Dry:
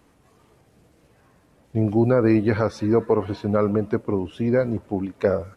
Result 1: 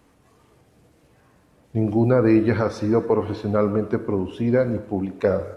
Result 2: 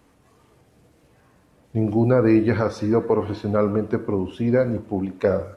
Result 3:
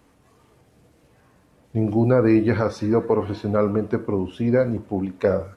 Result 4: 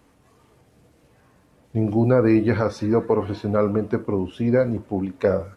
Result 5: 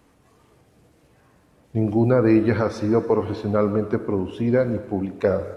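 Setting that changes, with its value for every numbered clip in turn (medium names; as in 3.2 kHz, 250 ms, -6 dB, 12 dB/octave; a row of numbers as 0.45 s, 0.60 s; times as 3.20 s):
gated-style reverb, gate: 320 ms, 210 ms, 140 ms, 100 ms, 490 ms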